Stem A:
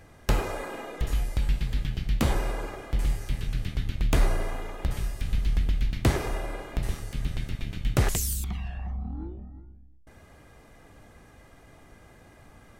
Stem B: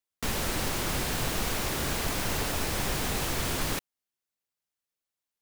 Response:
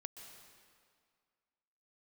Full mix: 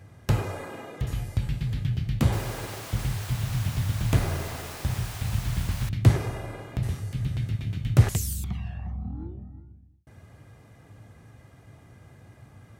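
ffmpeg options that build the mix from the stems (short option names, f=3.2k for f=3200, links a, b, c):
-filter_complex "[0:a]highpass=71,volume=-3dB[a];[1:a]highpass=f=600:w=0.5412,highpass=f=600:w=1.3066,adelay=2100,volume=-8.5dB[b];[a][b]amix=inputs=2:normalize=0,equalizer=f=110:w=1.2:g=14"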